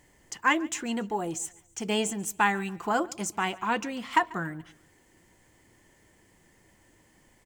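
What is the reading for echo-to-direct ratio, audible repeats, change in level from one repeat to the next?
−22.0 dB, 2, −8.0 dB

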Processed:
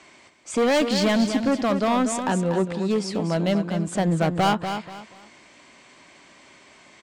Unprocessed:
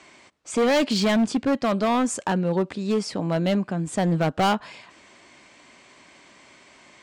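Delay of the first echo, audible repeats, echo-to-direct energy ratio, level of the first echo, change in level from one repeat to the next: 241 ms, 3, −7.5 dB, −8.0 dB, −11.0 dB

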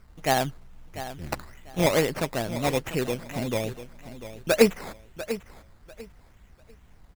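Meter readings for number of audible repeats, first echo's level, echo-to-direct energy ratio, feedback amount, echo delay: 2, −13.0 dB, −13.0 dB, 23%, 695 ms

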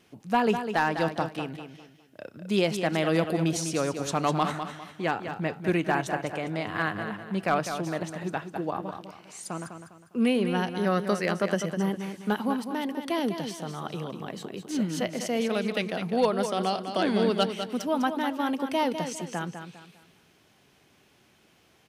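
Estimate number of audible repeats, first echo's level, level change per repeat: 3, −8.5 dB, −9.5 dB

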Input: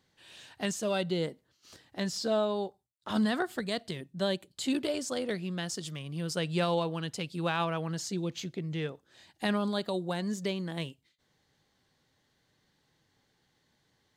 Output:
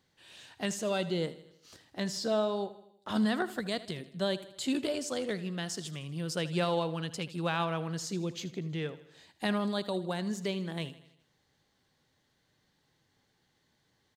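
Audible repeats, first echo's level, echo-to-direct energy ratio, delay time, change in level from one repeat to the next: 4, −16.0 dB, −14.5 dB, 79 ms, −5.5 dB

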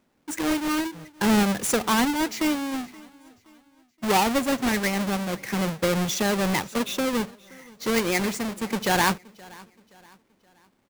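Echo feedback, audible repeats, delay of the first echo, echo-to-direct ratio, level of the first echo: 41%, 2, 523 ms, −22.5 dB, −23.5 dB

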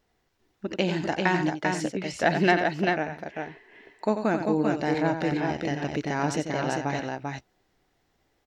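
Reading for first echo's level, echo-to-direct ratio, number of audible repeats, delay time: −8.5 dB, −2.5 dB, 2, 90 ms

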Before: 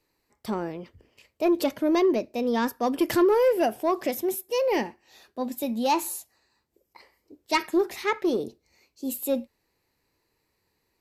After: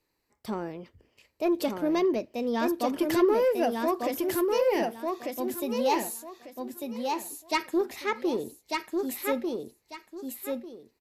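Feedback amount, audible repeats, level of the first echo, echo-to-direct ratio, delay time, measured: 24%, 3, −3.5 dB, −3.0 dB, 1,196 ms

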